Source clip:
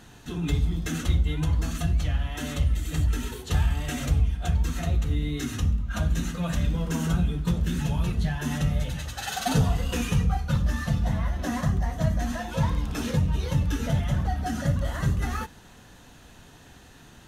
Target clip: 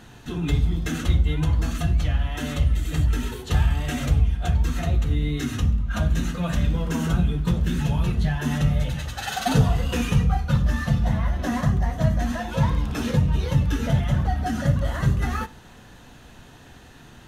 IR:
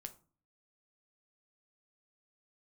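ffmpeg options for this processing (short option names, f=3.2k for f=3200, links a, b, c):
-filter_complex "[0:a]asplit=2[a][b];[1:a]atrim=start_sample=2205,lowpass=5.1k[c];[b][c]afir=irnorm=-1:irlink=0,volume=-0.5dB[d];[a][d]amix=inputs=2:normalize=0"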